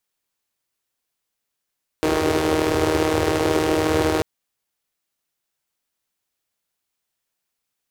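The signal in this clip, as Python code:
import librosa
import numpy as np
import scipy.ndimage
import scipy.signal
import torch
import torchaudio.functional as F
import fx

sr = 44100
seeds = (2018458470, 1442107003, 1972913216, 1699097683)

y = fx.engine_four(sr, seeds[0], length_s=2.19, rpm=4700, resonances_hz=(94.0, 370.0))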